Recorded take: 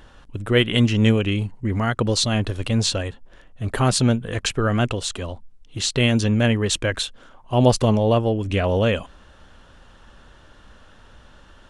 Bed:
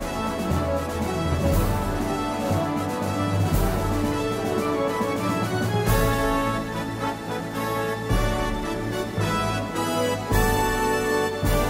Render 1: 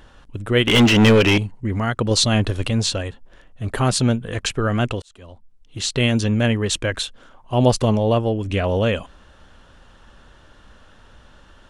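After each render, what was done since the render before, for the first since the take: 0.67–1.38 overdrive pedal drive 27 dB, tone 2700 Hz, clips at -4.5 dBFS; 2.11–2.7 gain +3.5 dB; 5.02–5.92 fade in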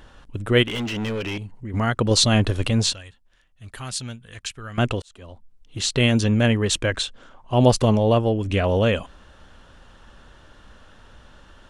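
0.63–1.74 compressor 2:1, threshold -37 dBFS; 2.93–4.78 passive tone stack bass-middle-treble 5-5-5; 6.93–7.56 LPF 9100 Hz 24 dB/oct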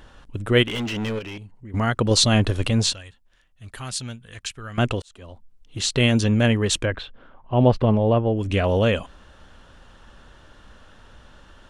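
1.19–1.74 gain -6.5 dB; 6.85–8.37 air absorption 390 m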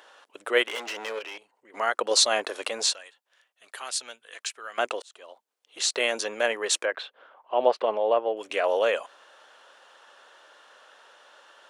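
HPF 480 Hz 24 dB/oct; dynamic EQ 3100 Hz, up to -6 dB, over -39 dBFS, Q 2.4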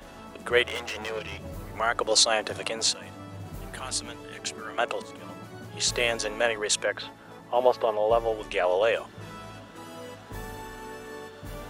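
add bed -18 dB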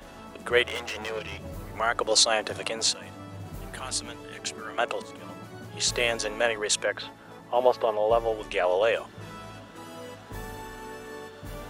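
nothing audible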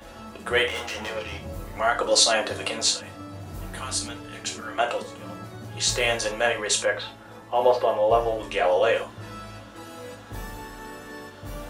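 non-linear reverb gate 0.11 s falling, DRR 1 dB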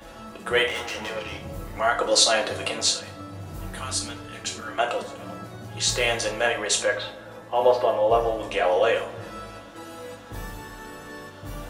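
darkening echo 99 ms, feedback 77%, low-pass 2700 Hz, level -17.5 dB; shoebox room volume 2300 m³, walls furnished, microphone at 0.64 m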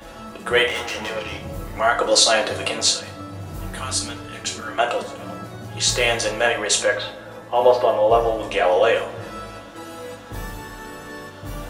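gain +4 dB; limiter -3 dBFS, peak gain reduction 1.5 dB

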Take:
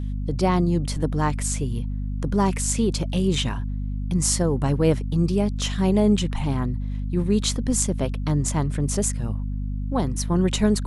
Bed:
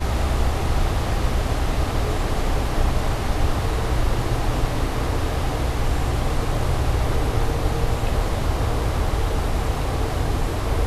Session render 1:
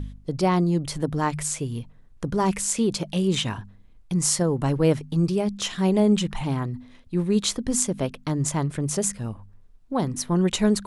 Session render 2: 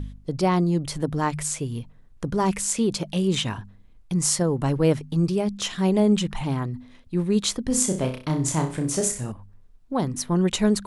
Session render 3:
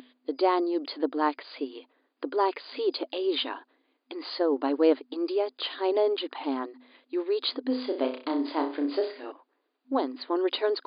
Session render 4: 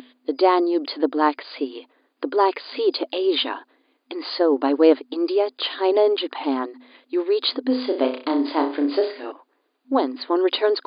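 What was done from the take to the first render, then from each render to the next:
de-hum 50 Hz, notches 5
7.67–9.32 flutter echo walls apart 5.4 m, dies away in 0.36 s
FFT band-pass 250–4900 Hz; dynamic EQ 2300 Hz, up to -5 dB, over -46 dBFS, Q 1.5
gain +7 dB

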